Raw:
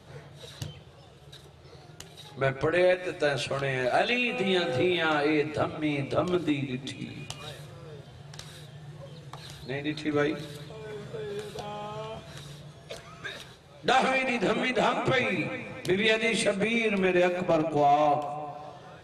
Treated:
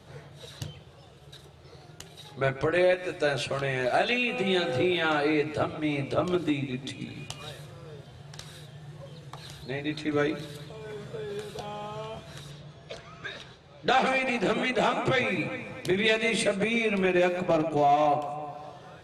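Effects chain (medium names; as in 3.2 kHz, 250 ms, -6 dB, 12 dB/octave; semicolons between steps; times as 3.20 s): 12.51–14.06 s: low-pass 5.8 kHz 12 dB/octave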